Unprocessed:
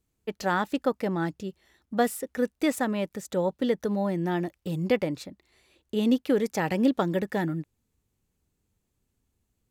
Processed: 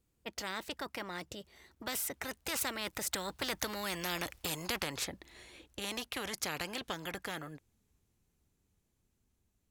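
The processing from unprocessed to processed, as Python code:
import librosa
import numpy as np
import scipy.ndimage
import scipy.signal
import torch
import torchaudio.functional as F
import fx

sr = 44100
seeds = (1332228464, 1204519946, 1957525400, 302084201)

y = fx.doppler_pass(x, sr, speed_mps=20, closest_m=11.0, pass_at_s=4.07)
y = fx.spectral_comp(y, sr, ratio=4.0)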